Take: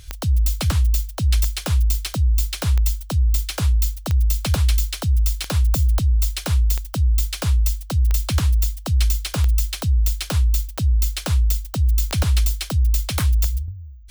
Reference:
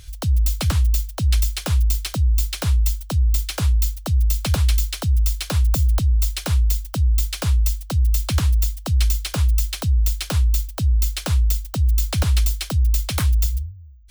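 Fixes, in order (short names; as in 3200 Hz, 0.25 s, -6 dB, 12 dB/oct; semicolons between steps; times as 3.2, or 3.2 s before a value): de-click; gain correction -5.5 dB, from 13.68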